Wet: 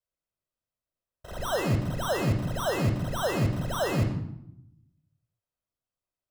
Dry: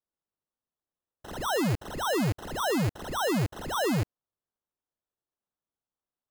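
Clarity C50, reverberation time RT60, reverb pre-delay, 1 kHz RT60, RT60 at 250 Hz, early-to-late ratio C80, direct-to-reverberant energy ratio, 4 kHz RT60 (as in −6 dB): 7.0 dB, 0.80 s, 3 ms, 0.75 s, 1.1 s, 9.5 dB, 3.5 dB, 0.55 s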